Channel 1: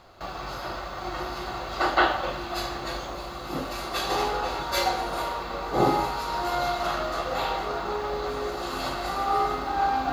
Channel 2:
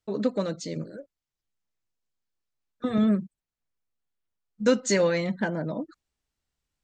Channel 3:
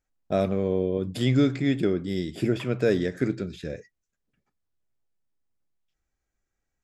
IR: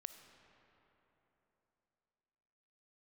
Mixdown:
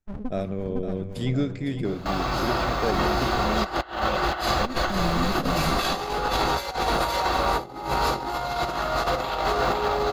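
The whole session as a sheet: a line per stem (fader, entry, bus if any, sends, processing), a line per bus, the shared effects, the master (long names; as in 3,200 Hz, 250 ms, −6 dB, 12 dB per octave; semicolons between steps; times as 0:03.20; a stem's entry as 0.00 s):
+3.0 dB, 1.85 s, send −5 dB, echo send −5 dB, mains-hum notches 50/100/150/200/250/300/350 Hz
−3.5 dB, 0.00 s, send −15 dB, echo send −7.5 dB, gate on every frequency bin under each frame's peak −20 dB strong; windowed peak hold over 65 samples; automatic ducking −16 dB, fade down 0.45 s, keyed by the third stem
−8.0 dB, 0.00 s, no send, echo send −10 dB, every ending faded ahead of time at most 160 dB per second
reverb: on, RT60 3.5 s, pre-delay 15 ms
echo: repeating echo 507 ms, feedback 52%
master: low-shelf EQ 110 Hz +6.5 dB; compressor whose output falls as the input rises −24 dBFS, ratio −0.5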